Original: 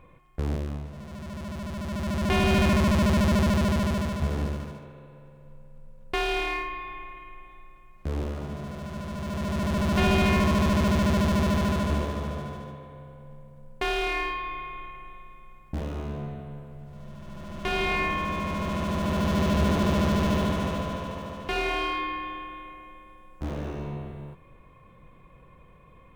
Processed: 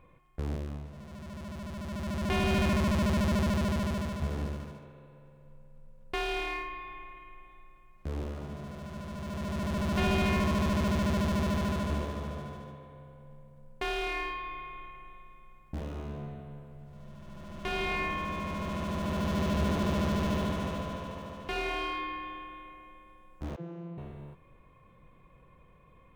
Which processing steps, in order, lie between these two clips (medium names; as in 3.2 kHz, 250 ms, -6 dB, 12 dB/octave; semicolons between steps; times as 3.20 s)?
23.56–23.98 s: vocoder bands 32, saw 170 Hz; trim -5.5 dB